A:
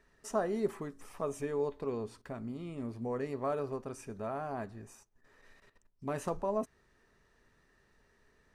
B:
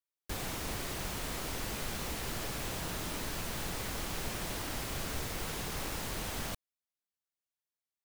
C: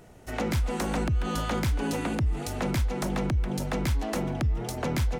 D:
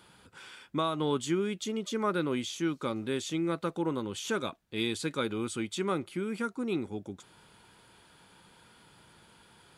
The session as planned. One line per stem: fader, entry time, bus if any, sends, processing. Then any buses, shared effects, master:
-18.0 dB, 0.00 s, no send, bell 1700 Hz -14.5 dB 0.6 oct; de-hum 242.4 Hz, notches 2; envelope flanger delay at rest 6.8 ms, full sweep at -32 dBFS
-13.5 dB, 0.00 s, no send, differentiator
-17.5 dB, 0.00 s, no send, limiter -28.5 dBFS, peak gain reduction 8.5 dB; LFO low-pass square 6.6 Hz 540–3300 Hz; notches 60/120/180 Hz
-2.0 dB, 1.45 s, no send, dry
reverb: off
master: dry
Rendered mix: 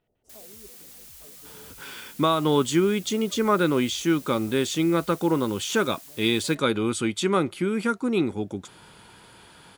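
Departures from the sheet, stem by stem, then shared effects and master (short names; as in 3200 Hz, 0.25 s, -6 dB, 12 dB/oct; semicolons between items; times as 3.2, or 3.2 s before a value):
stem B -13.5 dB -> -5.5 dB; stem C -17.5 dB -> -25.0 dB; stem D -2.0 dB -> +8.5 dB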